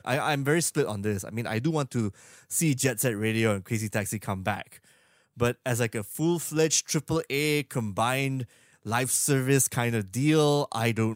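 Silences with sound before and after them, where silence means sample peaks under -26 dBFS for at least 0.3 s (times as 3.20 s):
2.08–2.52 s
4.61–5.41 s
8.42–8.87 s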